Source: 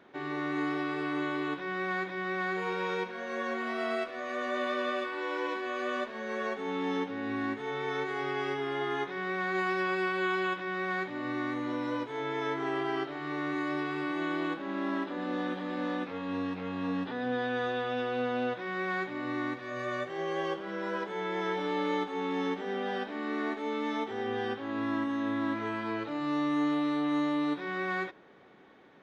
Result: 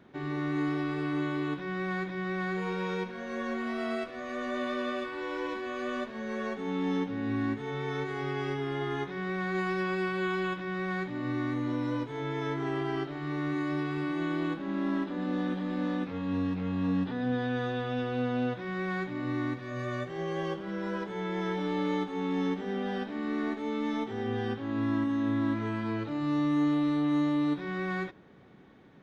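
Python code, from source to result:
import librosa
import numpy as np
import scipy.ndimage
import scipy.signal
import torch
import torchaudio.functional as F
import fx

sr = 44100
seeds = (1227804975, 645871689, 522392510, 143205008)

y = fx.bass_treble(x, sr, bass_db=15, treble_db=3)
y = y * 10.0 ** (-3.0 / 20.0)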